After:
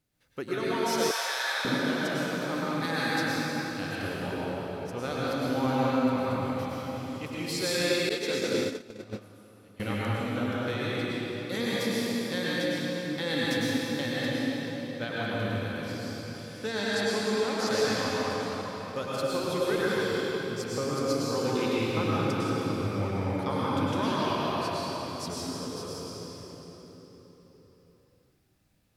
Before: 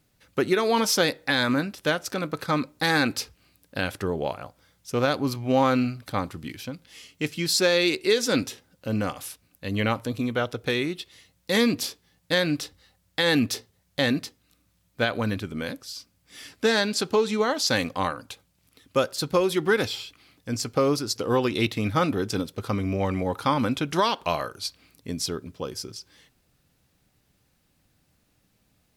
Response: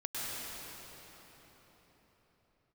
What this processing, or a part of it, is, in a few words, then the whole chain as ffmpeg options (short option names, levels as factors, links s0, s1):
cathedral: -filter_complex "[1:a]atrim=start_sample=2205[s0];[0:a][s0]afir=irnorm=-1:irlink=0,asettb=1/sr,asplit=3[s1][s2][s3];[s1]atrim=end=1.114[s4];[s2]atrim=start=1.11:end=1.65,asetpts=PTS-STARTPTS,afade=t=in:d=0.004:c=qsin,afade=t=out:st=0.536:d=0.004:c=qsin,highpass=f=710:w=0.5412,highpass=f=710:w=1.3066[s5];[s3]atrim=start=1.646[s6];[s4][s5]acrossfade=d=0.004:c1=hsin:c2=qsin[s7];[s7][s6]acrossfade=d=0.004:c1=qsin:c2=hsin,asettb=1/sr,asplit=3[s8][s9][s10];[s8]atrim=end=8.094[s11];[s9]atrim=start=8.09:end=9.8,asetpts=PTS-STARTPTS,afade=t=in:d=0.004:c=qsin,afade=t=out:st=1.706:d=0.004:c=qsin,agate=range=0.112:threshold=0.126:ratio=16:detection=peak[s12];[s10]atrim=start=9.796[s13];[s11][s12]acrossfade=d=0.004:c1=hsin:c2=qsin[s14];[s14][s13]acrossfade=d=0.004:c1=qsin:c2=hsin,volume=0.376"